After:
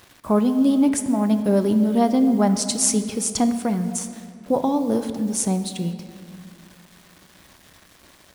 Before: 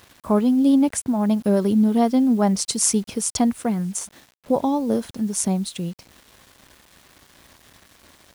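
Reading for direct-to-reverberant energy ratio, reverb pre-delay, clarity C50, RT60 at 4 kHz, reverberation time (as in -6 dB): 8.0 dB, 3 ms, 9.5 dB, 1.7 s, 2.4 s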